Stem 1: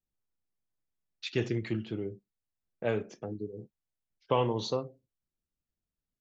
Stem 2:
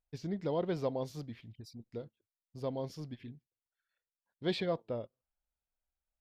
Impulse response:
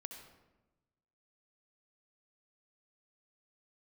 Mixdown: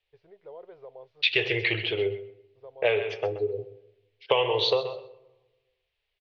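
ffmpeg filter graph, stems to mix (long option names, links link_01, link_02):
-filter_complex "[0:a]aexciter=amount=9.6:drive=6.8:freq=2100,lowpass=3600,volume=2.5dB,asplit=3[link_01][link_02][link_03];[link_02]volume=-9dB[link_04];[link_03]volume=-11.5dB[link_05];[1:a]alimiter=level_in=4dB:limit=-24dB:level=0:latency=1:release=30,volume=-4dB,volume=-16.5dB[link_06];[2:a]atrim=start_sample=2205[link_07];[link_04][link_07]afir=irnorm=-1:irlink=0[link_08];[link_05]aecho=0:1:128|256|384:1|0.15|0.0225[link_09];[link_01][link_06][link_08][link_09]amix=inputs=4:normalize=0,firequalizer=gain_entry='entry(100,0);entry(230,-24);entry(410,10);entry(3100,-1);entry(7700,-30)':delay=0.05:min_phase=1,acompressor=threshold=-20dB:ratio=6"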